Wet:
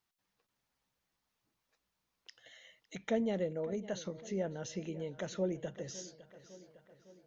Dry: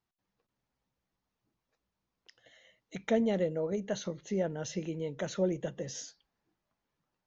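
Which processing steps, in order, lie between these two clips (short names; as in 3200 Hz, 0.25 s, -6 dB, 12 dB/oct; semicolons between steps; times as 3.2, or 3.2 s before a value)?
on a send: darkening echo 0.556 s, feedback 55%, low-pass 2800 Hz, level -17.5 dB; on the sum: mismatched tape noise reduction encoder only; gain -4.5 dB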